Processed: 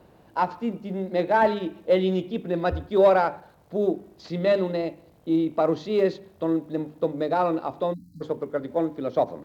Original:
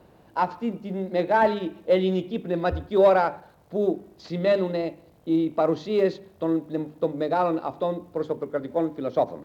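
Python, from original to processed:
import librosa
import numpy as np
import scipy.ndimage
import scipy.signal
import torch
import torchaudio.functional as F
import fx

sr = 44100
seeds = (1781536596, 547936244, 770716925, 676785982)

y = fx.spec_erase(x, sr, start_s=7.94, length_s=0.27, low_hz=280.0, high_hz=3900.0)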